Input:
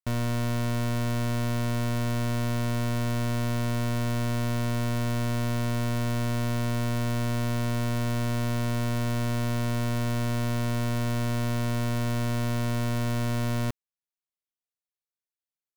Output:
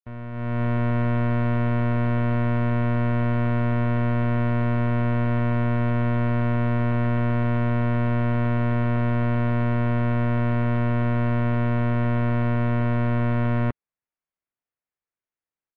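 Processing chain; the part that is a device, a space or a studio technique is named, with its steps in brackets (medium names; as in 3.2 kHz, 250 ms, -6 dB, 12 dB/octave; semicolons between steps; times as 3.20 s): action camera in a waterproof case (low-pass 2.3 kHz 24 dB/octave; level rider gain up to 14.5 dB; trim -9 dB; AAC 48 kbps 16 kHz)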